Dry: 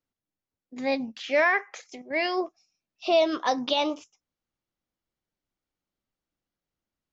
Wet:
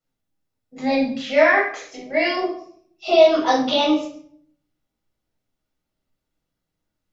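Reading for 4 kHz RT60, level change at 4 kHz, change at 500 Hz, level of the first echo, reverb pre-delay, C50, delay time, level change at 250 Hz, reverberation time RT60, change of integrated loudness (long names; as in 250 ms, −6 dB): 0.45 s, +6.0 dB, +8.5 dB, no echo audible, 6 ms, 4.0 dB, no echo audible, +9.0 dB, 0.60 s, +7.0 dB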